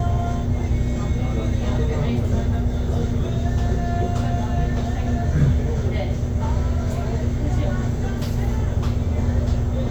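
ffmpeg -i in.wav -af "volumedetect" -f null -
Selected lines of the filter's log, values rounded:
mean_volume: -20.4 dB
max_volume: -6.5 dB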